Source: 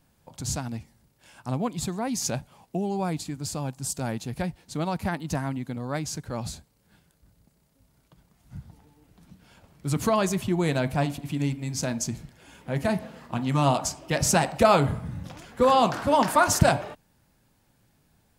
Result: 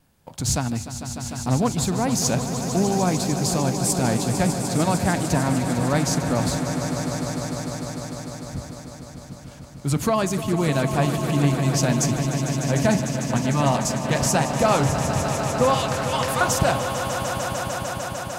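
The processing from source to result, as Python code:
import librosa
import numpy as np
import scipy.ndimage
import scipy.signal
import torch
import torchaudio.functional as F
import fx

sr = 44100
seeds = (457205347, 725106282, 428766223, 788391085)

p1 = fx.cheby1_highpass(x, sr, hz=1900.0, order=2, at=(15.74, 16.41))
p2 = fx.rider(p1, sr, range_db=4, speed_s=0.5)
p3 = fx.leveller(p2, sr, passes=1)
p4 = fx.vibrato(p3, sr, rate_hz=1.6, depth_cents=14.0)
y = p4 + fx.echo_swell(p4, sr, ms=150, loudest=5, wet_db=-11.0, dry=0)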